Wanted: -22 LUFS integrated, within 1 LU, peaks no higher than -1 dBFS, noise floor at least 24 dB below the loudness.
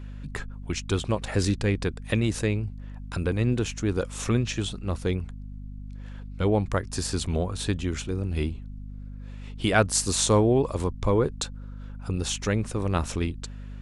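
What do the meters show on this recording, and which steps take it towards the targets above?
hum 50 Hz; harmonics up to 250 Hz; hum level -36 dBFS; loudness -27.0 LUFS; peak -5.0 dBFS; loudness target -22.0 LUFS
-> de-hum 50 Hz, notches 5; gain +5 dB; limiter -1 dBFS

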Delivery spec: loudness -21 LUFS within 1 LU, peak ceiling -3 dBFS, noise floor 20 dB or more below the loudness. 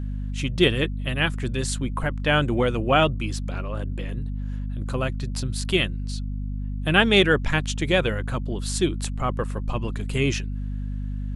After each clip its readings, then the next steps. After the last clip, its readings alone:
hum 50 Hz; harmonics up to 250 Hz; hum level -26 dBFS; loudness -24.5 LUFS; peak -3.5 dBFS; loudness target -21.0 LUFS
-> notches 50/100/150/200/250 Hz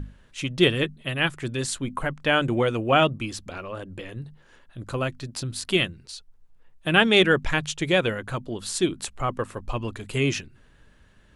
hum none; loudness -24.5 LUFS; peak -3.0 dBFS; loudness target -21.0 LUFS
-> gain +3.5 dB; limiter -3 dBFS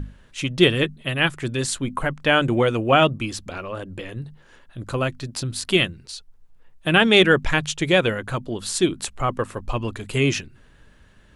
loudness -21.0 LUFS; peak -3.0 dBFS; noise floor -53 dBFS

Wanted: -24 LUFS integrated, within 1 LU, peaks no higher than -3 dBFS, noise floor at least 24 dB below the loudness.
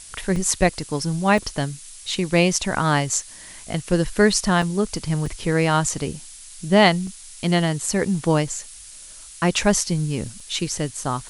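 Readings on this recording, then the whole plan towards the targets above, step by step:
dropouts 6; longest dropout 2.7 ms; noise floor -42 dBFS; noise floor target -46 dBFS; loudness -21.5 LUFS; peak -1.0 dBFS; loudness target -24.0 LUFS
-> interpolate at 0.36/1.38/4.62/5.26/7.07/10.4, 2.7 ms; noise print and reduce 6 dB; gain -2.5 dB

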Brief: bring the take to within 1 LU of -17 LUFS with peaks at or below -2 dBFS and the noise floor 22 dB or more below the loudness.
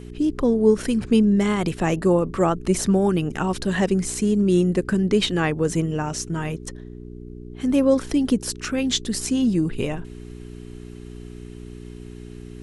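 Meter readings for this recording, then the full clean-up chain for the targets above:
hum 60 Hz; harmonics up to 420 Hz; hum level -37 dBFS; loudness -21.5 LUFS; peak -5.5 dBFS; loudness target -17.0 LUFS
-> de-hum 60 Hz, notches 7; gain +4.5 dB; limiter -2 dBFS

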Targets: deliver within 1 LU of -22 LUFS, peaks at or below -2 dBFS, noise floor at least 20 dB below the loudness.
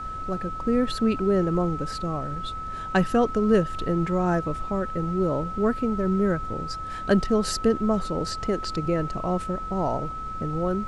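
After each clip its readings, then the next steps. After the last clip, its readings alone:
steady tone 1300 Hz; tone level -32 dBFS; noise floor -34 dBFS; noise floor target -46 dBFS; loudness -25.5 LUFS; peak -9.0 dBFS; loudness target -22.0 LUFS
-> notch 1300 Hz, Q 30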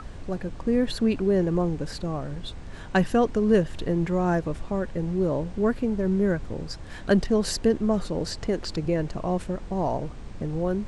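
steady tone none; noise floor -39 dBFS; noise floor target -46 dBFS
-> noise print and reduce 7 dB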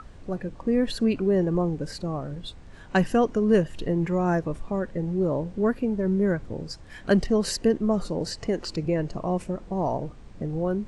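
noise floor -45 dBFS; noise floor target -46 dBFS
-> noise print and reduce 6 dB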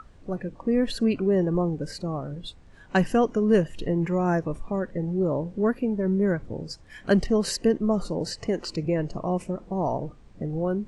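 noise floor -50 dBFS; loudness -26.0 LUFS; peak -9.0 dBFS; loudness target -22.0 LUFS
-> gain +4 dB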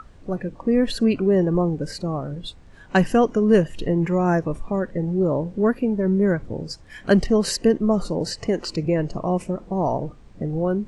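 loudness -22.0 LUFS; peak -5.0 dBFS; noise floor -46 dBFS

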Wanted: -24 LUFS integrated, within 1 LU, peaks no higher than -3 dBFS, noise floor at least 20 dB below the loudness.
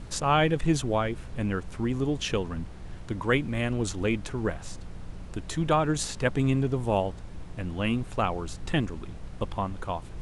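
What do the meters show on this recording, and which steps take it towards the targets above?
hum 60 Hz; harmonics up to 180 Hz; hum level -45 dBFS; noise floor -41 dBFS; noise floor target -49 dBFS; loudness -28.5 LUFS; peak -10.0 dBFS; loudness target -24.0 LUFS
-> de-hum 60 Hz, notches 3; noise print and reduce 8 dB; gain +4.5 dB

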